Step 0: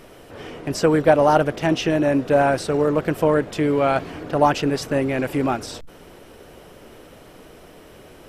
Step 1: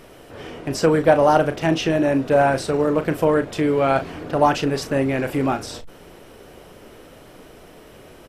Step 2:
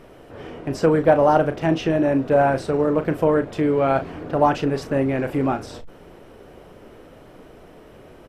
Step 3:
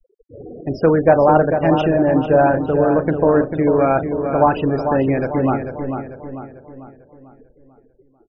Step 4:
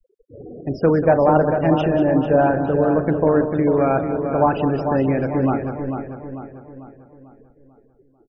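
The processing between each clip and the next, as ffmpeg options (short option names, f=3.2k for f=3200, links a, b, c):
-filter_complex "[0:a]asplit=2[a][b];[b]adelay=37,volume=-10.5dB[c];[a][c]amix=inputs=2:normalize=0"
-af "highshelf=f=2.6k:g=-10.5"
-filter_complex "[0:a]afftfilt=real='re*gte(hypot(re,im),0.0447)':imag='im*gte(hypot(re,im),0.0447)':win_size=1024:overlap=0.75,asplit=2[a][b];[b]adelay=445,lowpass=f=2.8k:p=1,volume=-7dB,asplit=2[c][d];[d]adelay=445,lowpass=f=2.8k:p=1,volume=0.47,asplit=2[e][f];[f]adelay=445,lowpass=f=2.8k:p=1,volume=0.47,asplit=2[g][h];[h]adelay=445,lowpass=f=2.8k:p=1,volume=0.47,asplit=2[i][j];[j]adelay=445,lowpass=f=2.8k:p=1,volume=0.47,asplit=2[k][l];[l]adelay=445,lowpass=f=2.8k:p=1,volume=0.47[m];[a][c][e][g][i][k][m]amix=inputs=7:normalize=0,volume=3dB"
-af "equalizer=f=180:t=o:w=2:g=3,aecho=1:1:189:0.282,volume=-3.5dB"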